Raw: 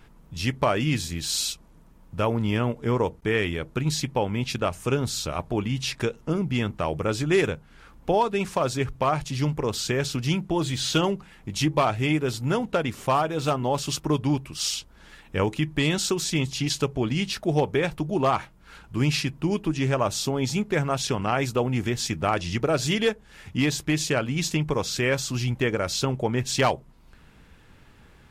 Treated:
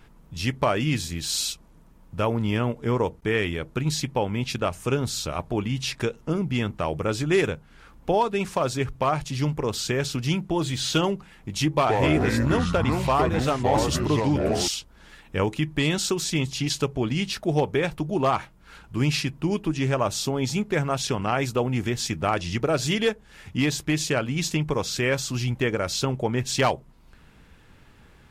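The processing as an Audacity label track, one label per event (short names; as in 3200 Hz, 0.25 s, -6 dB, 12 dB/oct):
11.750000	14.680000	echoes that change speed 0.118 s, each echo -5 st, echoes 3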